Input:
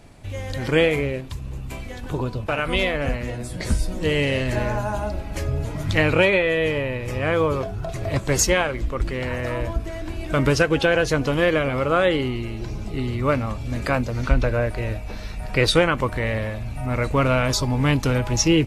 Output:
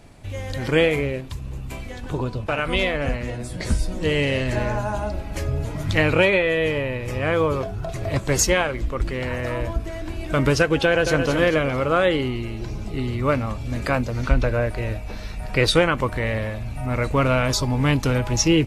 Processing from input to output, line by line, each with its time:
1.9–5.14 LPF 11000 Hz
10.84–11.27 echo throw 0.22 s, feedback 40%, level -6.5 dB

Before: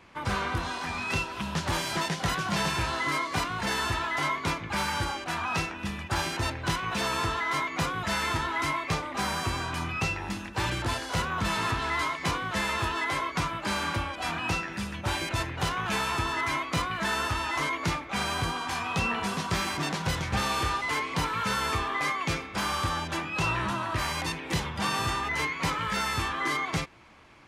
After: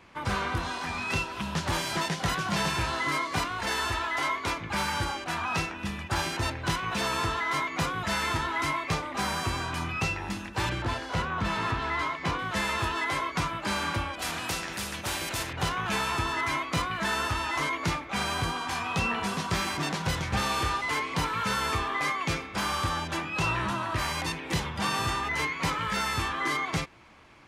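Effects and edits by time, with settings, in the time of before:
3.48–4.57 bell 160 Hz -12 dB
10.69–12.39 bell 12000 Hz -12 dB 1.8 oct
14.19–15.53 spectral compressor 2:1

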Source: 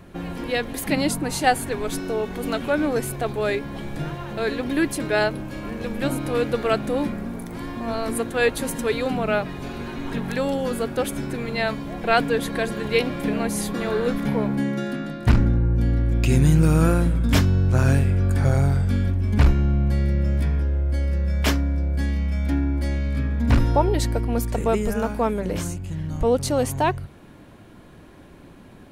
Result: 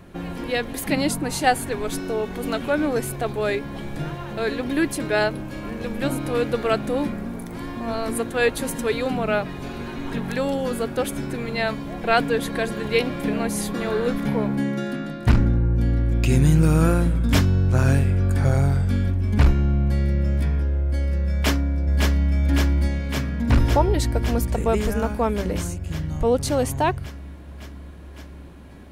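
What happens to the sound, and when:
21.31–22.31 echo throw 0.56 s, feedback 80%, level -3 dB

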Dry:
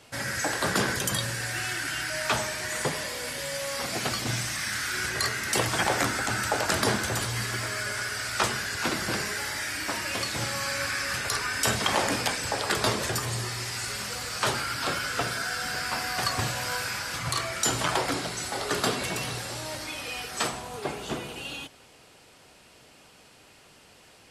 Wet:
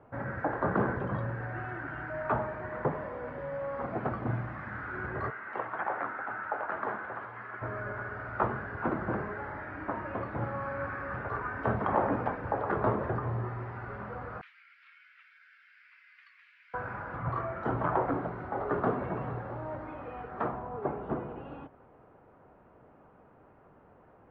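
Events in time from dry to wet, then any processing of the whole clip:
5.3–7.62 band-pass 2000 Hz, Q 0.72
14.41–16.74 elliptic high-pass 2200 Hz, stop band 70 dB
whole clip: LPF 1300 Hz 24 dB/oct

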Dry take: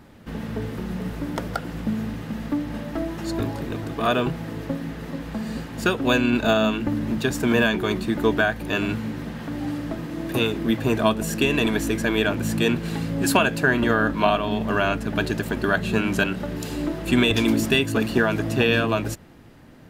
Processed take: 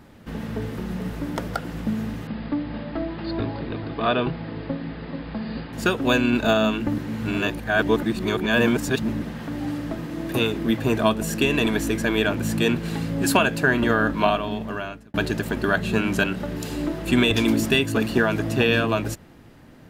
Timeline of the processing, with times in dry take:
2.27–5.73 Chebyshev low-pass 5000 Hz, order 10
6.98–9.22 reverse
14.22–15.14 fade out

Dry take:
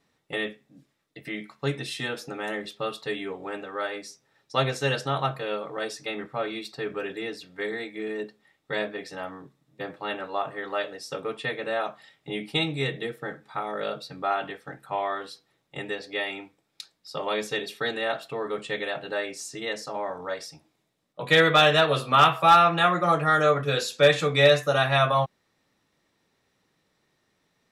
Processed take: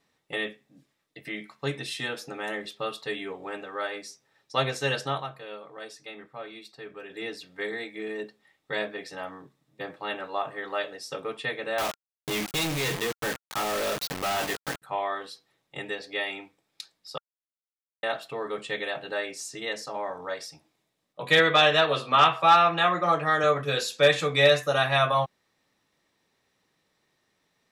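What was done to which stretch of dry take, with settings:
5.12–7.22 dip -8.5 dB, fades 0.13 s
11.78–14.82 companded quantiser 2-bit
17.18–18.03 mute
21.39–23.44 BPF 140–6600 Hz
whole clip: low shelf 440 Hz -4.5 dB; notch 1400 Hz, Q 21

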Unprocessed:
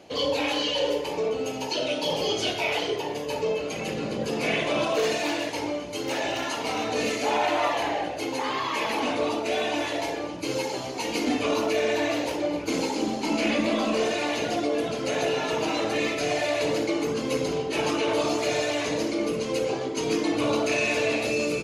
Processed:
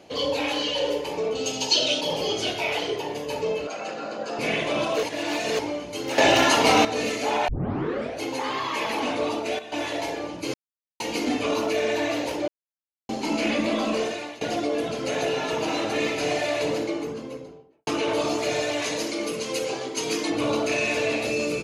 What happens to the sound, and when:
1.35–2.01 band shelf 4900 Hz +11.5 dB
3.67–4.39 speaker cabinet 370–7100 Hz, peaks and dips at 410 Hz -7 dB, 690 Hz +7 dB, 1400 Hz +9 dB, 2100 Hz -6 dB, 3300 Hz -7 dB, 5800 Hz -4 dB
5.03–5.59 reverse
6.18–6.85 gain +11 dB
7.48 tape start 0.72 s
9.28–10.03 dip -13 dB, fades 0.31 s logarithmic
10.54–11 mute
12.48–13.09 mute
13.94–14.41 fade out, to -19 dB
15.15–15.85 echo throw 0.52 s, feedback 55%, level -9 dB
16.51–17.87 studio fade out
18.82–20.3 tilt +2 dB/oct

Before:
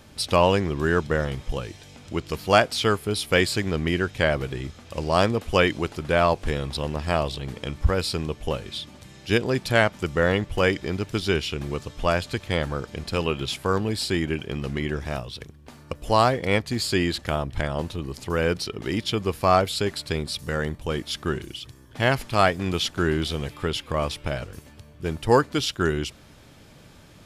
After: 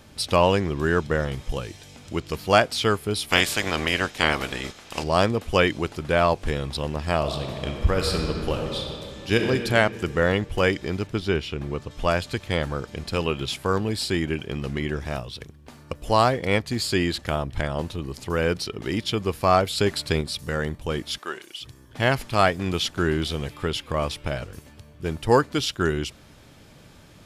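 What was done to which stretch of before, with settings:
1.33–2.2 high shelf 5900 Hz +4.5 dB
3.28–5.02 spectral limiter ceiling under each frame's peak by 20 dB
7.18–9.4 reverb throw, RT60 2.7 s, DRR 2 dB
11.07–11.91 high shelf 3700 Hz -10.5 dB
19.78–20.21 gain +3.5 dB
21.18–21.61 HPF 580 Hz

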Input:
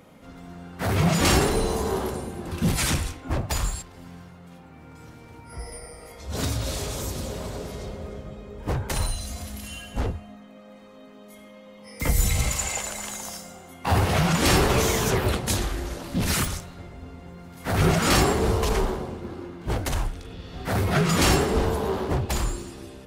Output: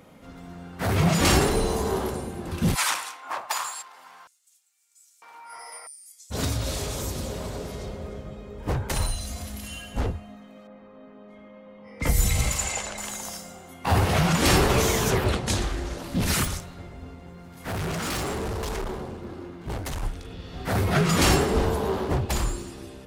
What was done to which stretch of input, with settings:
2.74–6.3 LFO high-pass square 0.2 Hz -> 1.1 Hz 990–7400 Hz
10.67–12.98 low-pass opened by the level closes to 1600 Hz, open at -22 dBFS
15.24–15.98 LPF 8600 Hz
17.14–20.03 tube stage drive 27 dB, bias 0.4

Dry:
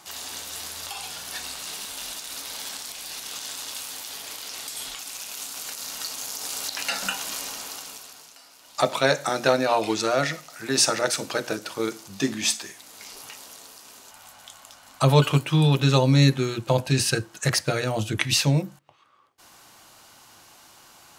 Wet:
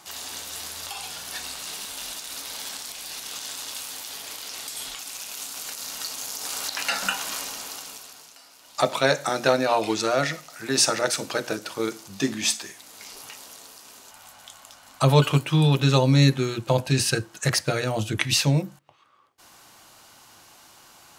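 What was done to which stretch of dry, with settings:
6.45–7.44 bell 1300 Hz +4 dB 1.7 oct

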